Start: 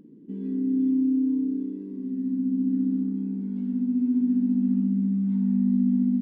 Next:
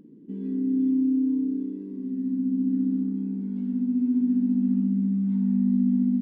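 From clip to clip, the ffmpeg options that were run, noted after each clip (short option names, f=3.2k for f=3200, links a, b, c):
-af anull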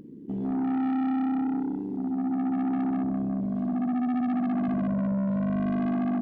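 -af "tremolo=f=71:d=0.571,asoftclip=type=tanh:threshold=-32.5dB,volume=8dB"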